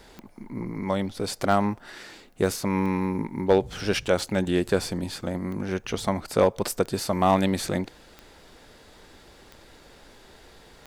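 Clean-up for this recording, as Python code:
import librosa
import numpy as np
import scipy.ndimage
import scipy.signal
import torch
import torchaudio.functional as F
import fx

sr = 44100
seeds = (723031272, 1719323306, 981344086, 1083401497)

y = fx.fix_declip(x, sr, threshold_db=-9.5)
y = fx.fix_declick_ar(y, sr, threshold=10.0)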